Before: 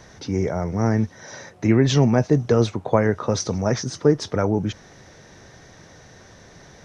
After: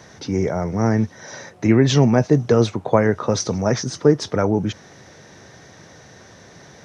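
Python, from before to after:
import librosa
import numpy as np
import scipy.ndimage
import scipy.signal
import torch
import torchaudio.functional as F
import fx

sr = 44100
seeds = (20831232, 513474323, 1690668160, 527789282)

y = scipy.signal.sosfilt(scipy.signal.butter(2, 90.0, 'highpass', fs=sr, output='sos'), x)
y = y * librosa.db_to_amplitude(2.5)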